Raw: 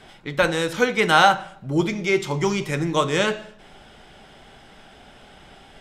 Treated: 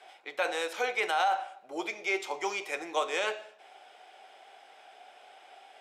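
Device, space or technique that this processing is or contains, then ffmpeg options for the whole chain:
laptop speaker: -af "highpass=frequency=420:width=0.5412,highpass=frequency=420:width=1.3066,equalizer=frequency=740:width_type=o:width=0.27:gain=10.5,equalizer=frequency=2400:width_type=o:width=0.22:gain=6.5,alimiter=limit=-10dB:level=0:latency=1:release=13,volume=-8.5dB"

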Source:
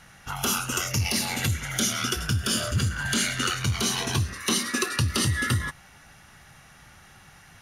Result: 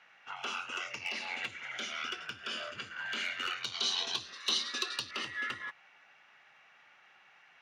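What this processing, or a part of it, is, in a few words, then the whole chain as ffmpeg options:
megaphone: -filter_complex "[0:a]highpass=520,lowpass=3100,lowpass=frequency=8600:width=0.5412,lowpass=frequency=8600:width=1.3066,equalizer=frequency=2500:width_type=o:width=0.57:gain=7.5,asoftclip=type=hard:threshold=-18dB,asettb=1/sr,asplit=3[link_01][link_02][link_03];[link_01]atrim=end=3.634[link_04];[link_02]atrim=start=3.63:end=5.11,asetpts=PTS-STARTPTS,afade=type=in:duration=0.004:curve=qsin,afade=type=out:start_time=1.476:duration=0.004:curve=qsin,highshelf=frequency=3000:width_type=q:width=3:gain=8[link_05];[link_03]atrim=start=5.106[link_06];[link_04][link_05]acrossfade=duration=0.004:curve1=hsin:curve2=qsin[link_07];[link_07][link_06]acrossfade=duration=0.004:curve1=qsin:curve2=hsin,volume=-9dB"

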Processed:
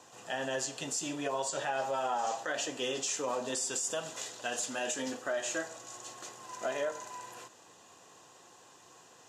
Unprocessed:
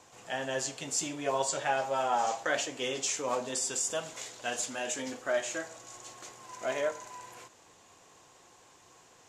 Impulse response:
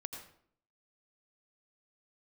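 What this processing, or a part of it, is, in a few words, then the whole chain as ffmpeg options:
PA system with an anti-feedback notch: -af "highpass=120,asuperstop=centerf=2200:order=4:qfactor=7.9,alimiter=level_in=1.5dB:limit=-24dB:level=0:latency=1:release=103,volume=-1.5dB,volume=1.5dB"

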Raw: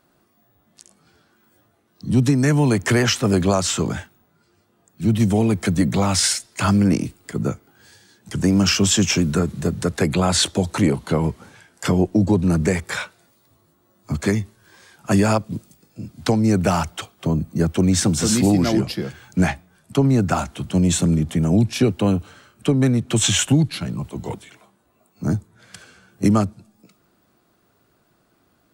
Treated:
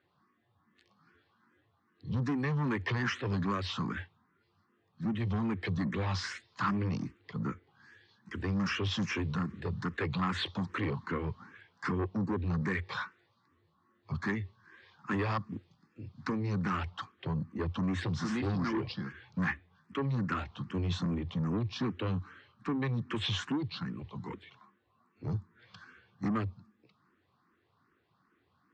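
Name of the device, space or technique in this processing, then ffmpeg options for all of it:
barber-pole phaser into a guitar amplifier: -filter_complex "[0:a]asplit=2[link_01][link_02];[link_02]afreqshift=2.5[link_03];[link_01][link_03]amix=inputs=2:normalize=1,asoftclip=type=tanh:threshold=-19.5dB,highpass=79,equalizer=frequency=91:width_type=q:width=4:gain=6,equalizer=frequency=640:width_type=q:width=4:gain=-10,equalizer=frequency=1100:width_type=q:width=4:gain=9,equalizer=frequency=1800:width_type=q:width=4:gain=7,lowpass=frequency=4400:width=0.5412,lowpass=frequency=4400:width=1.3066,volume=-8dB"

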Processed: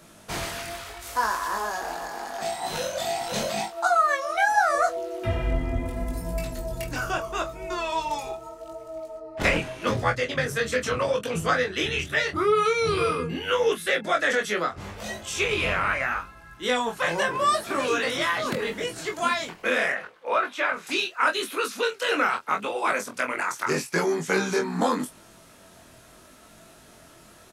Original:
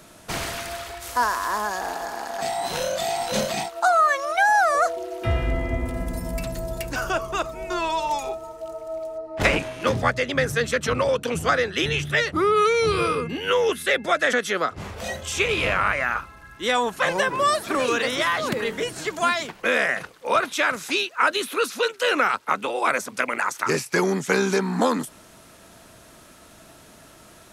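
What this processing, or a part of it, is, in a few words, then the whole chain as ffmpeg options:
double-tracked vocal: -filter_complex "[0:a]asettb=1/sr,asplit=3[link_01][link_02][link_03];[link_01]atrim=end=19.924[link_04];[link_02]atrim=start=19.92:end=20.87,asetpts=PTS-STARTPTS,afade=type=in:duration=0.004:curve=qsin,afade=type=out:start_time=0.946:duration=0.004:curve=qsin,bass=frequency=250:gain=-12,treble=frequency=4000:gain=-14[link_05];[link_03]atrim=start=20.866[link_06];[link_04][link_05]acrossfade=duration=0.004:curve1=hsin:curve2=qsin[link_07];[link_07][link_06]acrossfade=duration=0.004:curve1=qsin:curve2=hsin,asplit=2[link_08][link_09];[link_09]adelay=24,volume=-9.5dB[link_10];[link_08][link_10]amix=inputs=2:normalize=0,flanger=delay=18:depth=5.6:speed=0.79"

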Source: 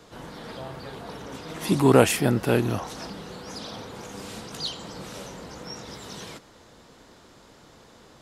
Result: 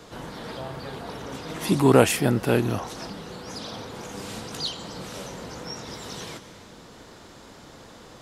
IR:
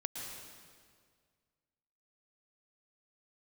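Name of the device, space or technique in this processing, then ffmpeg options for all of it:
ducked reverb: -filter_complex "[0:a]asplit=3[link_01][link_02][link_03];[1:a]atrim=start_sample=2205[link_04];[link_02][link_04]afir=irnorm=-1:irlink=0[link_05];[link_03]apad=whole_len=362444[link_06];[link_05][link_06]sidechaincompress=threshold=-40dB:ratio=8:attack=16:release=1350,volume=-0.5dB[link_07];[link_01][link_07]amix=inputs=2:normalize=0"

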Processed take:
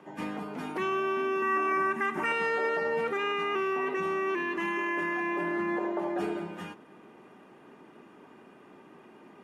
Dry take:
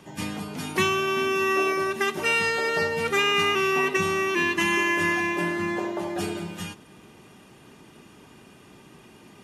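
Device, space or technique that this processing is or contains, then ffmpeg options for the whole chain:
DJ mixer with the lows and highs turned down: -filter_complex "[0:a]acrossover=split=200 2100:gain=0.0891 1 0.126[link_01][link_02][link_03];[link_01][link_02][link_03]amix=inputs=3:normalize=0,alimiter=limit=-22dB:level=0:latency=1:release=34,asettb=1/sr,asplit=3[link_04][link_05][link_06];[link_04]atrim=end=1.424[link_07];[link_05]atrim=start=1.42:end=2.32,asetpts=PTS-STARTPTS,afade=type=in:duration=0.004:curve=qsin,afade=type=out:start_time=0.896:duration=0.004:curve=qsin,equalizer=frequency=125:width_type=o:width=1:gain=4,equalizer=frequency=250:width_type=o:width=1:gain=6,equalizer=frequency=500:width_type=o:width=1:gain=-10,equalizer=frequency=1000:width_type=o:width=1:gain=5,equalizer=frequency=2000:width_type=o:width=1:gain=6,equalizer=frequency=4000:width_type=o:width=1:gain=-7,equalizer=frequency=8000:width_type=o:width=1:gain=6[link_08];[link_06]atrim=start=2.316[link_09];[link_07][link_08]acrossfade=duration=0.004:curve1=hsin:curve2=qsin[link_10];[link_10][link_09]acrossfade=duration=0.004:curve1=qsin:curve2=hsin"

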